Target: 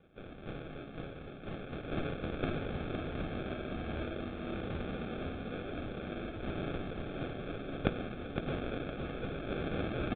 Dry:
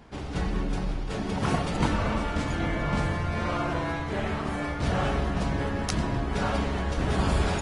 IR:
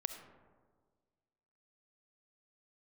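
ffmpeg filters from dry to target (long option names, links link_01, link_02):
-filter_complex "[0:a]aderivative,acrusher=samples=34:mix=1:aa=0.000001,aresample=11025,aresample=44100,asplit=2[link_01][link_02];[link_02]aecho=0:1:383|766|1149|1532|1915:0.501|0.2|0.0802|0.0321|0.0128[link_03];[link_01][link_03]amix=inputs=2:normalize=0,asetrate=33075,aresample=44100,volume=7dB"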